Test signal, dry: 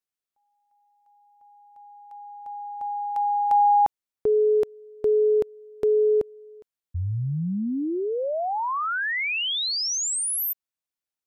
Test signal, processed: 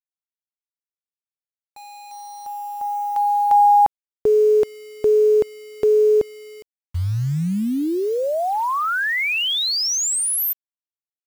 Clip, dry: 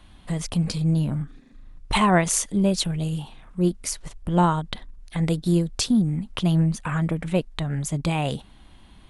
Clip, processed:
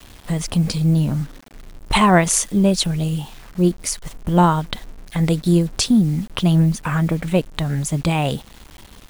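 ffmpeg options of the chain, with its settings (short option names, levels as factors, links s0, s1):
-af "acrusher=bits=7:mix=0:aa=0.000001,volume=1.78"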